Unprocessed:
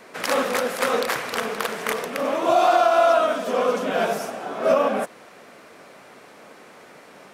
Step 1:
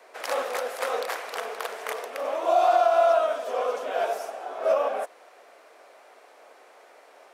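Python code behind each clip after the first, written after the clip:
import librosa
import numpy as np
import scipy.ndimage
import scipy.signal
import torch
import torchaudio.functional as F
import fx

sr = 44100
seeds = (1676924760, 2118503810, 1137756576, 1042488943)

y = scipy.signal.sosfilt(scipy.signal.butter(4, 370.0, 'highpass', fs=sr, output='sos'), x)
y = fx.peak_eq(y, sr, hz=710.0, db=6.0, octaves=0.75)
y = F.gain(torch.from_numpy(y), -8.0).numpy()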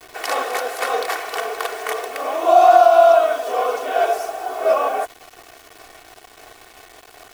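y = fx.quant_dither(x, sr, seeds[0], bits=8, dither='none')
y = y + 0.64 * np.pad(y, (int(2.7 * sr / 1000.0), 0))[:len(y)]
y = F.gain(torch.from_numpy(y), 6.0).numpy()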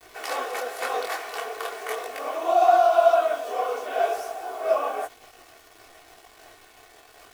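y = fx.detune_double(x, sr, cents=33)
y = F.gain(torch.from_numpy(y), -3.0).numpy()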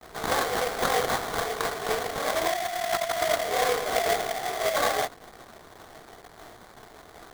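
y = fx.over_compress(x, sr, threshold_db=-25.0, ratio=-1.0)
y = fx.sample_hold(y, sr, seeds[1], rate_hz=2700.0, jitter_pct=20)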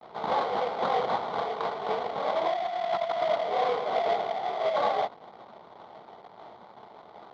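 y = 10.0 ** (-16.5 / 20.0) * np.tanh(x / 10.0 ** (-16.5 / 20.0))
y = fx.cabinet(y, sr, low_hz=150.0, low_slope=12, high_hz=3700.0, hz=(200.0, 290.0, 580.0, 880.0, 1700.0, 2600.0), db=(4, -4, 4, 9, -10, -5))
y = F.gain(torch.from_numpy(y), -2.5).numpy()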